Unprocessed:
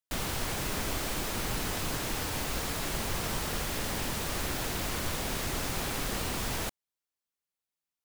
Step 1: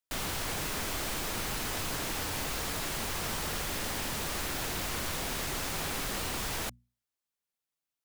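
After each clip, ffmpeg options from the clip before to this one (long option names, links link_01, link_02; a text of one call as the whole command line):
ffmpeg -i in.wav -filter_complex "[0:a]bandreject=frequency=60:width_type=h:width=6,bandreject=frequency=120:width_type=h:width=6,bandreject=frequency=180:width_type=h:width=6,bandreject=frequency=240:width_type=h:width=6,acrossover=split=810[link_01][link_02];[link_01]alimiter=level_in=8.5dB:limit=-24dB:level=0:latency=1:release=17,volume=-8.5dB[link_03];[link_03][link_02]amix=inputs=2:normalize=0" out.wav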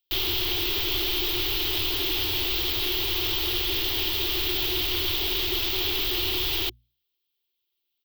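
ffmpeg -i in.wav -af "firequalizer=gain_entry='entry(110,0);entry(160,-30);entry(360,10);entry(510,-14);entry(730,-6);entry(1600,-9);entry(3200,12);entry(9900,-29);entry(14000,8)':delay=0.05:min_phase=1,volume=5.5dB" out.wav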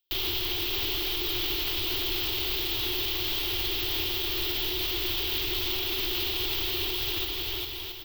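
ffmpeg -i in.wav -filter_complex "[0:a]asplit=2[link_01][link_02];[link_02]aecho=0:1:560|952|1226|1418|1553:0.631|0.398|0.251|0.158|0.1[link_03];[link_01][link_03]amix=inputs=2:normalize=0,alimiter=limit=-20dB:level=0:latency=1:release=23" out.wav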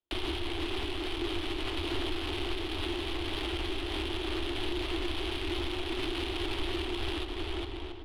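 ffmpeg -i in.wav -af "adynamicsmooth=sensitivity=2:basefreq=1000,afreqshift=-15,alimiter=level_in=4.5dB:limit=-24dB:level=0:latency=1:release=241,volume=-4.5dB,volume=6dB" out.wav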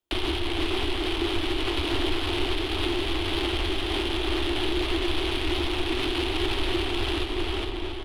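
ffmpeg -i in.wav -af "aecho=1:1:458:0.422,volume=6.5dB" out.wav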